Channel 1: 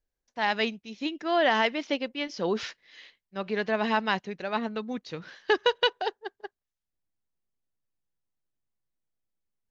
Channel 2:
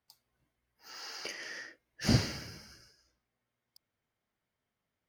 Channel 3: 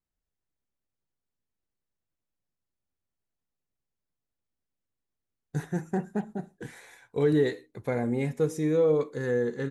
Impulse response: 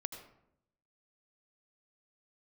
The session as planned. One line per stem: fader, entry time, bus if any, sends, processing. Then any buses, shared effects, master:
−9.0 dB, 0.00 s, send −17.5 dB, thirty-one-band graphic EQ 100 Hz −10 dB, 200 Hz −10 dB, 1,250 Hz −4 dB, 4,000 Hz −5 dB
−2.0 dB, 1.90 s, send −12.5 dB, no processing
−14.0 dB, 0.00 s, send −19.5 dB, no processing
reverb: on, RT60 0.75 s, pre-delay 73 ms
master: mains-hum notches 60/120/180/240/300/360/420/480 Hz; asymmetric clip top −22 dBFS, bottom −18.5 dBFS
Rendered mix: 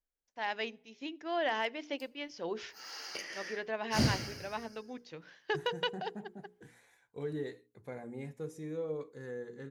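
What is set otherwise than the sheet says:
stem 1: send −17.5 dB → −23.5 dB
stem 3: send off

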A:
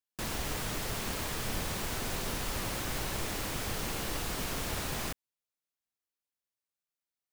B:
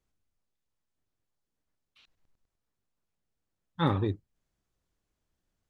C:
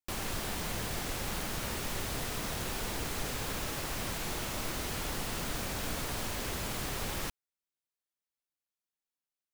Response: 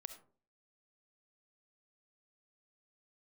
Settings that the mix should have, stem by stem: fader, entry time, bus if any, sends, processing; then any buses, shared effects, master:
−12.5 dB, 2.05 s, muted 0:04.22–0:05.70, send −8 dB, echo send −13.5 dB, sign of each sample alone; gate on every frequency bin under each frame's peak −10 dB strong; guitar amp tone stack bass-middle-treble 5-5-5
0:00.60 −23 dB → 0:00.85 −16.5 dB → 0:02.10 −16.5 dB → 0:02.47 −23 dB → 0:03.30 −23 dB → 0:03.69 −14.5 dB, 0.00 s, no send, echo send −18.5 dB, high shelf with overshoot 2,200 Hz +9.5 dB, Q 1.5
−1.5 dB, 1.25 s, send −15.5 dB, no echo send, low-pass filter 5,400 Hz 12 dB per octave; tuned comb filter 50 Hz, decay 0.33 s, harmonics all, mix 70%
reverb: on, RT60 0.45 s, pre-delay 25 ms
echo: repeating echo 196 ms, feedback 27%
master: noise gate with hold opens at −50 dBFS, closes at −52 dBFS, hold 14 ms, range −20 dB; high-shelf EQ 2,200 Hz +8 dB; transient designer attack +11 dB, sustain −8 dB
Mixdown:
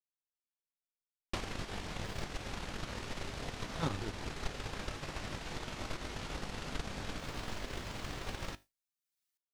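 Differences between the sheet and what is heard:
stem A −12.5 dB → −21.5 dB
stem B: missing high shelf with overshoot 2,200 Hz +9.5 dB, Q 1.5
master: missing high-shelf EQ 2,200 Hz +8 dB

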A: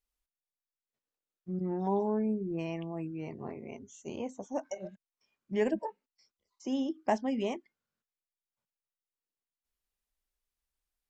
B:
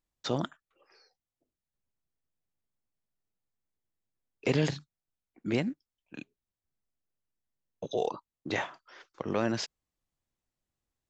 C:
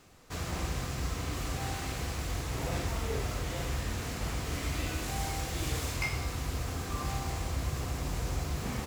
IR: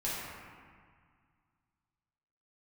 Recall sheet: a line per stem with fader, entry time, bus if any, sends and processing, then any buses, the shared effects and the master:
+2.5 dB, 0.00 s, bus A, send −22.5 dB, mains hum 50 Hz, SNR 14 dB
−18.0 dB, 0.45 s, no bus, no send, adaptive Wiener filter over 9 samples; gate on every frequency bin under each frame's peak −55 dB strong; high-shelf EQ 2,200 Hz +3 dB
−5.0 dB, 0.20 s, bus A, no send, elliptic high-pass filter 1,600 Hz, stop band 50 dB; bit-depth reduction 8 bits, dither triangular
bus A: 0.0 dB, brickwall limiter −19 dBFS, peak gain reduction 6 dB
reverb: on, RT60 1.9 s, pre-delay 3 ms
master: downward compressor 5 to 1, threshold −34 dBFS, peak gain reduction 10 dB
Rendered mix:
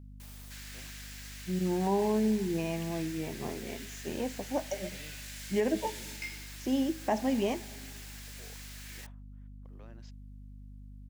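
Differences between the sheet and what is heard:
stem B −18.0 dB → −27.0 dB
master: missing downward compressor 5 to 1, threshold −34 dBFS, peak gain reduction 10 dB

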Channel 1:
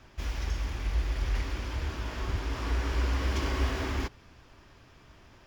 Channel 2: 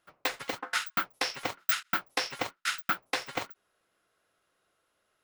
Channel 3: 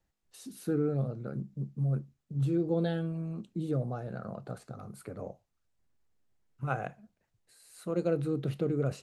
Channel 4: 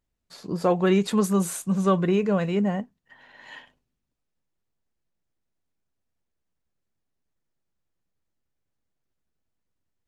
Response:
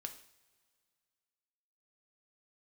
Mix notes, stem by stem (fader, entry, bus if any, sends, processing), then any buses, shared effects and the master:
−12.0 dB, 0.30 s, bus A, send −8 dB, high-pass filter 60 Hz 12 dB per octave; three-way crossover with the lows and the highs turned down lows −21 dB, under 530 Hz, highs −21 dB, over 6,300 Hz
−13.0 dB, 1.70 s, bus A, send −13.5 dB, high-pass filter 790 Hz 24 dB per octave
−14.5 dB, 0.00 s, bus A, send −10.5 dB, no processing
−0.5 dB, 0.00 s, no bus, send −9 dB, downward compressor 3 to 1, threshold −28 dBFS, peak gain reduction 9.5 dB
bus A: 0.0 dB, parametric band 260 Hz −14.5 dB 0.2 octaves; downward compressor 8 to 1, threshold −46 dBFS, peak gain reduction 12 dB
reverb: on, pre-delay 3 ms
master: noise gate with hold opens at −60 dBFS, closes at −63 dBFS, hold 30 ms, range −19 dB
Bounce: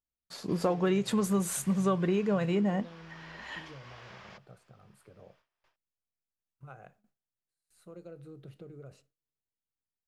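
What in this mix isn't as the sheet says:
stem 1: send −8 dB → −15.5 dB
stem 2: muted

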